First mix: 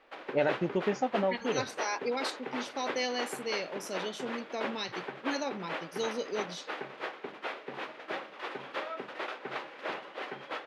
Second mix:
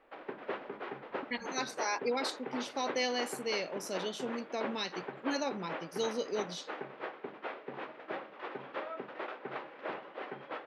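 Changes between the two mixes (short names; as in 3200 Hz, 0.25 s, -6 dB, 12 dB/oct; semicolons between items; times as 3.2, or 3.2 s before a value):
first voice: muted; background: add tape spacing loss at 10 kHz 28 dB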